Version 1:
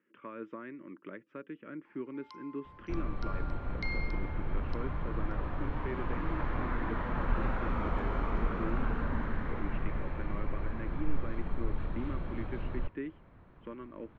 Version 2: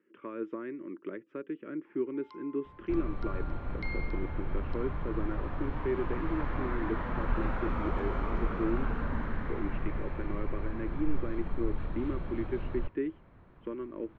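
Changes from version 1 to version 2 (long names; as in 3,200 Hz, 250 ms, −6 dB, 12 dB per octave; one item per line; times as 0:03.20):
speech: add parametric band 370 Hz +10 dB 0.73 octaves
first sound: add high-frequency loss of the air 190 metres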